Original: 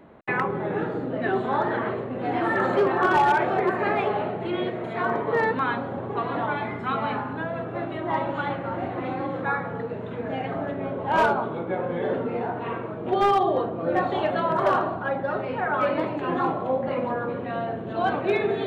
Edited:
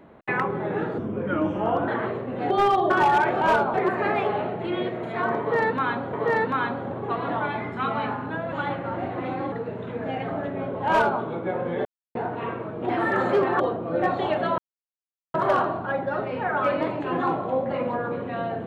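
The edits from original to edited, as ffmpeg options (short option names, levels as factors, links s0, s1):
-filter_complex "[0:a]asplit=15[s0][s1][s2][s3][s4][s5][s6][s7][s8][s9][s10][s11][s12][s13][s14];[s0]atrim=end=0.984[s15];[s1]atrim=start=0.98:end=1.71,asetpts=PTS-STARTPTS,asetrate=35721,aresample=44100,atrim=end_sample=39744,asetpts=PTS-STARTPTS[s16];[s2]atrim=start=1.706:end=2.332[s17];[s3]atrim=start=13.128:end=13.532[s18];[s4]atrim=start=3.038:end=3.552[s19];[s5]atrim=start=11.108:end=11.442[s20];[s6]atrim=start=3.548:end=5.942[s21];[s7]atrim=start=5.198:end=7.592[s22];[s8]atrim=start=8.318:end=9.322[s23];[s9]atrim=start=9.758:end=12.09,asetpts=PTS-STARTPTS,afade=t=out:st=2.328:d=0.004:c=hsin[s24];[s10]atrim=start=12.09:end=12.39,asetpts=PTS-STARTPTS,volume=0[s25];[s11]atrim=start=12.39:end=13.132,asetpts=PTS-STARTPTS,afade=t=in:d=0.004:c=hsin[s26];[s12]atrim=start=2.328:end=3.042[s27];[s13]atrim=start=13.528:end=14.51,asetpts=PTS-STARTPTS,afade=t=out:st=0.978:d=0.004:c=hsin,apad=pad_dur=0.76[s28];[s14]atrim=start=14.51,asetpts=PTS-STARTPTS,afade=t=in:d=0.004:c=hsin[s29];[s15][s16]acrossfade=d=0.004:c1=hsin:c2=hsin[s30];[s30][s17]acrossfade=d=0.004:c1=hsin:c2=hsin[s31];[s31][s18]acrossfade=d=0.004:c1=hsin:c2=hsin[s32];[s32][s19]acrossfade=d=0.004:c1=hsin:c2=hsin[s33];[s33][s20]acrossfade=d=0.004:c1=hsin:c2=hsin[s34];[s34][s21]acrossfade=d=0.004:c1=hsin:c2=hsin[s35];[s35][s22]acrossfade=d=0.004:c1=hsin:c2=hsin[s36];[s36][s23]acrossfade=d=0.004:c1=hsin:c2=hsin[s37];[s24][s25][s26]concat=n=3:v=0:a=1[s38];[s37][s38]acrossfade=d=0.004:c1=hsin:c2=hsin[s39];[s39][s27]acrossfade=d=0.004:c1=hsin:c2=hsin[s40];[s28][s29]concat=n=2:v=0:a=1[s41];[s40][s41]acrossfade=d=0.004:c1=hsin:c2=hsin"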